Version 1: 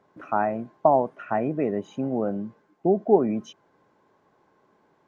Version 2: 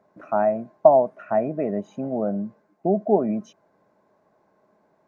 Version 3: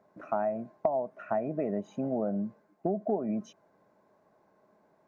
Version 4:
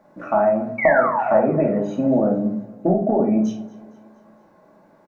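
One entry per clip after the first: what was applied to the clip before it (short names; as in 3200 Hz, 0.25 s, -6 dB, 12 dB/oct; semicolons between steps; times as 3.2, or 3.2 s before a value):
thirty-one-band EQ 200 Hz +7 dB, 630 Hz +11 dB, 3150 Hz -8 dB; gain -3 dB
compressor 5:1, threshold -24 dBFS, peak gain reduction 14.5 dB; gain -2.5 dB
painted sound fall, 0.78–1.51, 370–2300 Hz -34 dBFS; feedback echo 0.231 s, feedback 52%, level -21 dB; shoebox room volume 550 m³, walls furnished, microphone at 2.4 m; gain +8.5 dB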